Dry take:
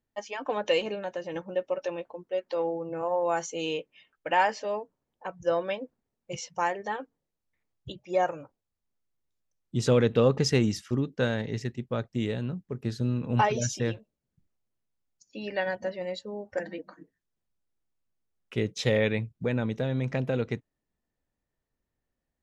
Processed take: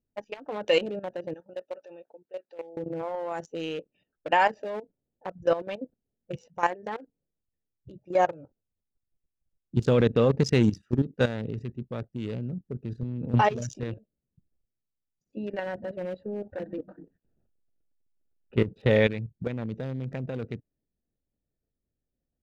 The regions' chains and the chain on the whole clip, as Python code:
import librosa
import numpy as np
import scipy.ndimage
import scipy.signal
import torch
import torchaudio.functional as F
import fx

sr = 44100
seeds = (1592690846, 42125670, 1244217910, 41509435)

y = fx.chain(x, sr, fx.highpass(hz=1300.0, slope=6),
    fx.high_shelf(hz=6000.0, db=10.0), at=(1.34, 2.77))
y = fx.chain(y, sr, fx.law_mismatch(coded='mu'),
    fx.moving_average(points=7), at=(15.53, 18.91))
y = fx.wiener(y, sr, points=41)
y = fx.level_steps(y, sr, step_db=13)
y = y * librosa.db_to_amplitude(6.5)